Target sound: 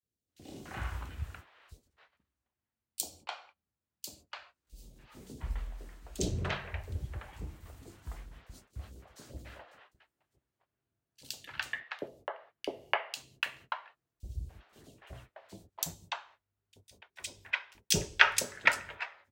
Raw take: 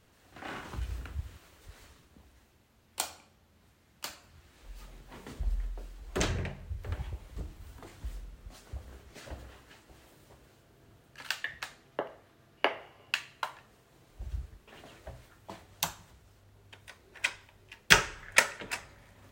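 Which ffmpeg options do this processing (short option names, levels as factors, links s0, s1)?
-filter_complex "[0:a]highpass=50,agate=range=0.0447:threshold=0.00251:ratio=16:detection=peak,acrossover=split=540|3700[s0][s1][s2];[s0]adelay=30[s3];[s1]adelay=290[s4];[s3][s4][s2]amix=inputs=3:normalize=0"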